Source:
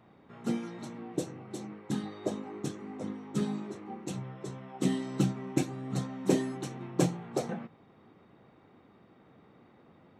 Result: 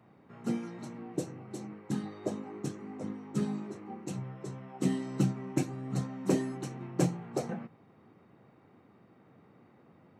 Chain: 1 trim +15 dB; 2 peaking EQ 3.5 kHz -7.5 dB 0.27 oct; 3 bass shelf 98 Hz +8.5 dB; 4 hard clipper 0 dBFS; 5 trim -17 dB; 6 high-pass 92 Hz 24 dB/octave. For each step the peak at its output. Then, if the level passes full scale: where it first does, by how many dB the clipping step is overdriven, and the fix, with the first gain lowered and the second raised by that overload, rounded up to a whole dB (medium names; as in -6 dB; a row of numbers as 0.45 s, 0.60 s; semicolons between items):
+3.5 dBFS, +4.0 dBFS, +4.5 dBFS, 0.0 dBFS, -17.0 dBFS, -13.5 dBFS; step 1, 4.5 dB; step 1 +10 dB, step 5 -12 dB